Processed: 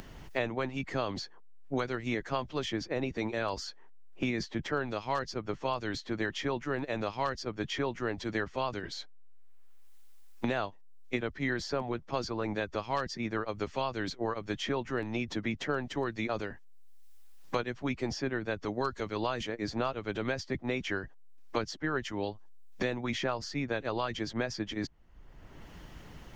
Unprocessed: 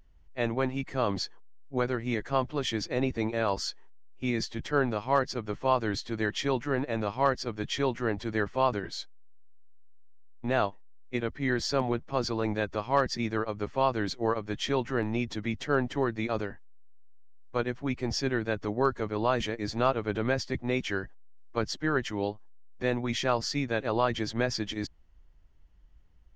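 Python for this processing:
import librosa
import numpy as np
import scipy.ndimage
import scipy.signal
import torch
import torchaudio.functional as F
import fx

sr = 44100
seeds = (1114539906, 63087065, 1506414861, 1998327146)

y = fx.hpss(x, sr, part='percussive', gain_db=4)
y = fx.band_squash(y, sr, depth_pct=100)
y = y * 10.0 ** (-7.5 / 20.0)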